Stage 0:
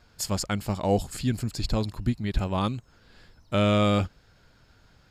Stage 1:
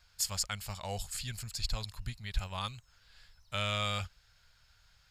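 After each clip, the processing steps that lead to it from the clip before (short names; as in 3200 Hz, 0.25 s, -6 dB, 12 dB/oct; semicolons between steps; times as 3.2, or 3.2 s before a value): passive tone stack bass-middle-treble 10-0-10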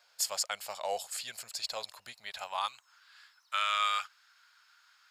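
high-pass sweep 580 Hz -> 1200 Hz, 2.21–3.04; gain +1 dB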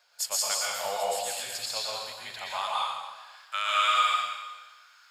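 reverb RT60 1.3 s, pre-delay 0.11 s, DRR -5 dB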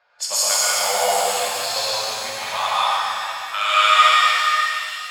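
low-pass opened by the level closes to 1900 Hz, open at -25.5 dBFS; shimmer reverb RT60 2.7 s, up +7 st, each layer -8 dB, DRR -3.5 dB; gain +5.5 dB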